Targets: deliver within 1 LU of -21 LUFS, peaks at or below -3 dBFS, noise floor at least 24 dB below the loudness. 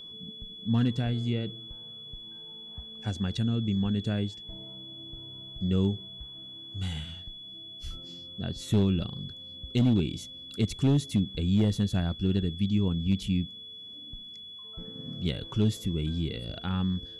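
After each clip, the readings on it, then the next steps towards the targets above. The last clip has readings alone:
clipped samples 0.4%; clipping level -17.5 dBFS; steady tone 3.4 kHz; tone level -42 dBFS; loudness -29.5 LUFS; peak level -17.5 dBFS; loudness target -21.0 LUFS
-> clip repair -17.5 dBFS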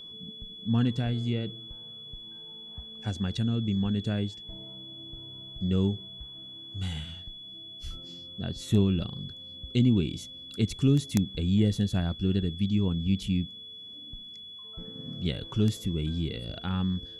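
clipped samples 0.0%; steady tone 3.4 kHz; tone level -42 dBFS
-> band-stop 3.4 kHz, Q 30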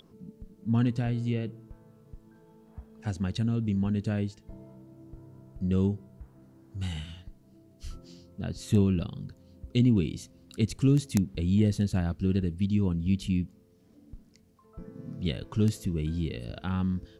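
steady tone not found; loudness -29.0 LUFS; peak level -8.5 dBFS; loudness target -21.0 LUFS
-> trim +8 dB; peak limiter -3 dBFS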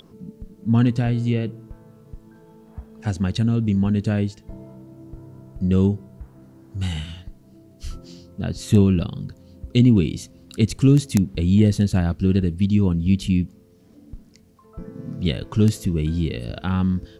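loudness -21.0 LUFS; peak level -3.0 dBFS; noise floor -51 dBFS

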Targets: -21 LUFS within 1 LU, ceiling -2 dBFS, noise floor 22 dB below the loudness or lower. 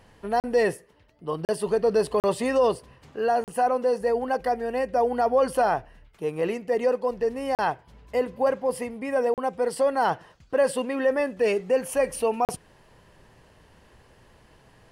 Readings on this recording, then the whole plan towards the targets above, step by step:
dropouts 7; longest dropout 38 ms; loudness -25.5 LUFS; peak level -12.0 dBFS; loudness target -21.0 LUFS
-> interpolate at 0.40/1.45/2.20/3.44/7.55/9.34/12.45 s, 38 ms; trim +4.5 dB

